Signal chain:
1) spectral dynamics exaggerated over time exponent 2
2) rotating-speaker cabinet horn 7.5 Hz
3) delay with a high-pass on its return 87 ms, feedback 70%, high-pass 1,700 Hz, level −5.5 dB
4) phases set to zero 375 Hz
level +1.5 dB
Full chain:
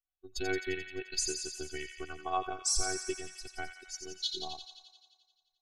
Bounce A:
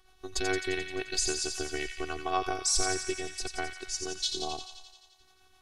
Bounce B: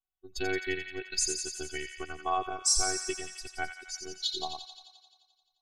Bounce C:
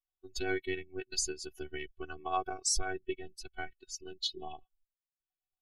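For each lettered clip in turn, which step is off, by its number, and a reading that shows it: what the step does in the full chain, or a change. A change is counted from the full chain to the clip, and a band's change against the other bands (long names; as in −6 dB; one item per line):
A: 1, change in momentary loudness spread −4 LU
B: 2, 125 Hz band −2.5 dB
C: 3, 4 kHz band −2.0 dB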